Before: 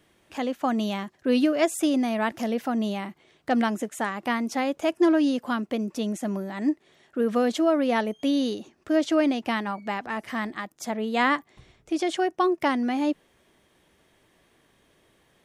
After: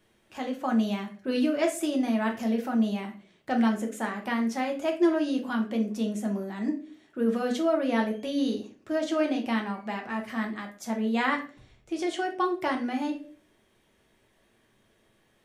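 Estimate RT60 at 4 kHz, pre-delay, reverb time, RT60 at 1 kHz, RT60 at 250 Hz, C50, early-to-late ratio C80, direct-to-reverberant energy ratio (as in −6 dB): 0.30 s, 5 ms, 0.40 s, 0.35 s, 0.60 s, 10.5 dB, 16.0 dB, 1.0 dB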